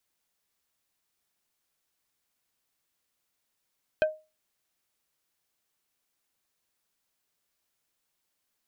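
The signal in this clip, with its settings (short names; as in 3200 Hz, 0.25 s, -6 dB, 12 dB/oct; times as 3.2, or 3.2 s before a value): wood hit plate, lowest mode 622 Hz, decay 0.28 s, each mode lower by 6 dB, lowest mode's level -17 dB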